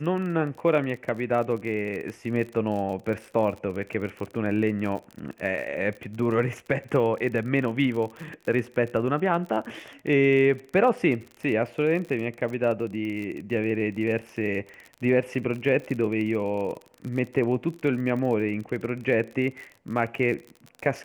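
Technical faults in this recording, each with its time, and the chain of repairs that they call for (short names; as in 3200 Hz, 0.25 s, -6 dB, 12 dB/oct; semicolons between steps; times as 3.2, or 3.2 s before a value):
crackle 45/s -33 dBFS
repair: de-click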